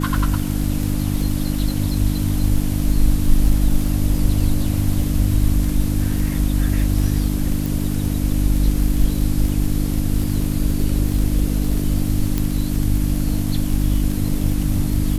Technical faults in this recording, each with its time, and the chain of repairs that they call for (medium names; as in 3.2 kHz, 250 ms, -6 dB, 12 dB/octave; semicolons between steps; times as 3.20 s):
crackle 45 per s -23 dBFS
hum 50 Hz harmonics 6 -22 dBFS
7.66 s: pop
12.38 s: pop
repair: de-click; de-hum 50 Hz, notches 6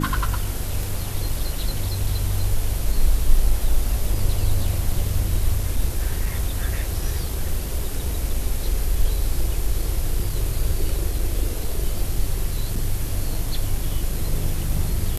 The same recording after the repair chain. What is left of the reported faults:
nothing left